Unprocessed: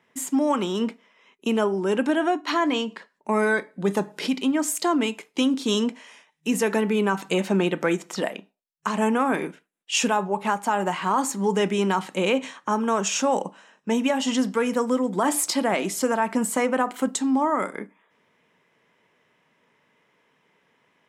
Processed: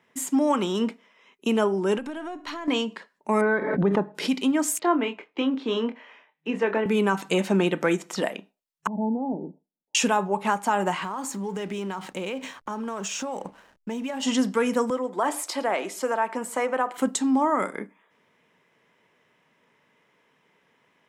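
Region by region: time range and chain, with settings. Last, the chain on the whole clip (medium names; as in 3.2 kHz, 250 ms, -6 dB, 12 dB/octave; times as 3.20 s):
1.98–2.68 s: partial rectifier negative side -3 dB + compression 5:1, threshold -31 dBFS
3.41–4.15 s: low-pass 1.6 kHz + swell ahead of each attack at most 41 dB/s
4.79–6.86 s: Bessel low-pass 4.4 kHz + three-band isolator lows -12 dB, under 260 Hz, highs -20 dB, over 3.2 kHz + doubling 26 ms -8 dB
8.87–9.95 s: rippled Chebyshev low-pass 890 Hz, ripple 3 dB + peaking EQ 620 Hz -6.5 dB 2.1 oct
11.03–14.23 s: compression 5:1, threshold -28 dBFS + hysteresis with a dead band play -47.5 dBFS
14.90–16.98 s: high-pass 430 Hz + treble shelf 3 kHz -9 dB + delay 111 ms -21 dB
whole clip: none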